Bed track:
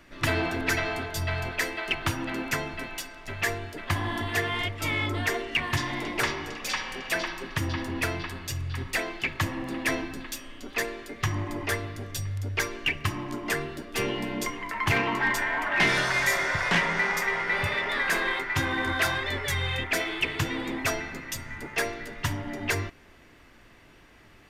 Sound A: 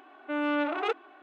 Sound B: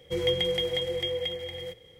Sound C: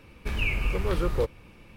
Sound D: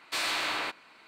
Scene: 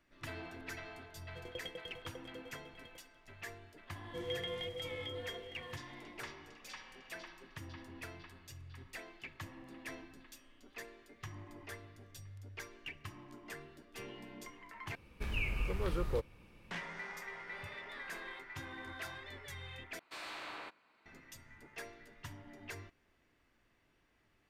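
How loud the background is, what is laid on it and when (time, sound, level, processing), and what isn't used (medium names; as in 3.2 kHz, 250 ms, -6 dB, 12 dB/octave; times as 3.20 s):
bed track -19.5 dB
1.25 s: add B -14 dB + sawtooth tremolo in dB decaying 10 Hz, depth 28 dB
4.03 s: add B -14 dB + treble shelf 8 kHz -5 dB
14.95 s: replace with C -9 dB
19.99 s: replace with D -12 dB + treble shelf 2.6 kHz -9 dB
not used: A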